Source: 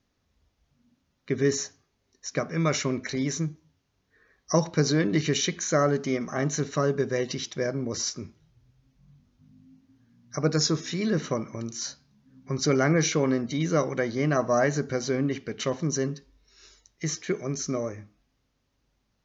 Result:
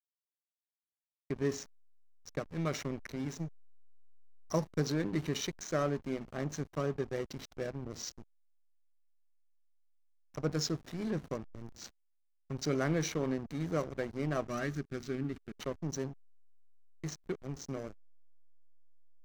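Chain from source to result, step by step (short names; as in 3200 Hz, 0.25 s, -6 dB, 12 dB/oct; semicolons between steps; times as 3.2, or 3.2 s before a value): backlash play -25.5 dBFS; spectral gain 14.48–15.59, 420–1100 Hz -9 dB; gain -8.5 dB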